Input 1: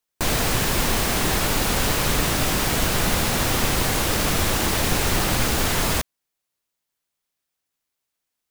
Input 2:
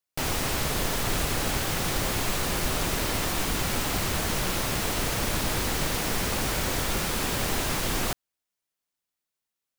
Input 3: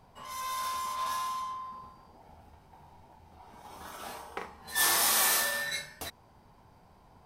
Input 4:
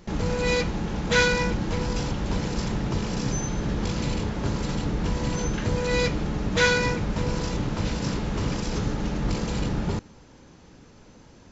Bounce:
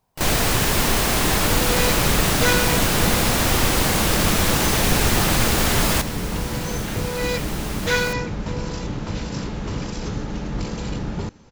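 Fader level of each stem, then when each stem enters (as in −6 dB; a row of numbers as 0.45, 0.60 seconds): +2.0, −4.0, −12.5, −0.5 decibels; 0.00, 0.00, 0.00, 1.30 seconds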